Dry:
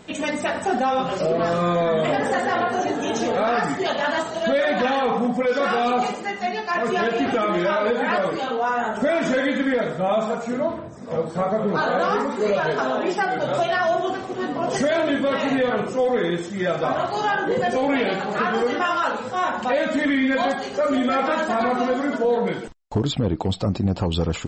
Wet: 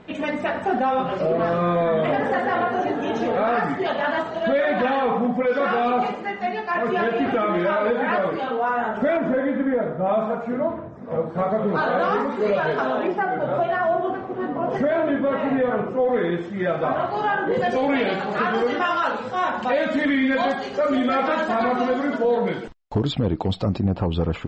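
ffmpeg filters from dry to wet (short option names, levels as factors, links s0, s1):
-af "asetnsamples=n=441:p=0,asendcmd='9.17 lowpass f 1200;10.06 lowpass f 1900;11.38 lowpass f 3200;13.07 lowpass f 1600;16.09 lowpass f 2400;17.54 lowpass f 4500;23.8 lowpass f 2400',lowpass=2600"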